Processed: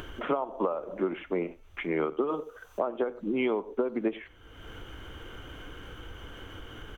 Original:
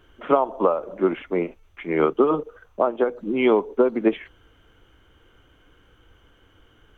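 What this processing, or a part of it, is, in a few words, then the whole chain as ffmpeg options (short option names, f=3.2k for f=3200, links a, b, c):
upward and downward compression: -filter_complex "[0:a]asettb=1/sr,asplit=3[a][b][c];[a]atrim=end=2.294[d];[b]atrim=start=2.29:end=2.8,asetpts=PTS-STARTPTS,afade=t=in:d=0.004:c=qsin,afade=t=out:st=0.506:d=0.004:c=qsin,bass=f=250:g=-7,treble=f=4k:g=11[e];[c]atrim=start=2.796[f];[d][e]acrossfade=d=0.004:c1=hsin:c2=qsin[g];[g][f]acrossfade=d=0.004:c1=qsin:c2=hsin,aecho=1:1:93:0.075,acompressor=mode=upward:threshold=-25dB:ratio=2.5,acompressor=threshold=-21dB:ratio=6,volume=-3.5dB"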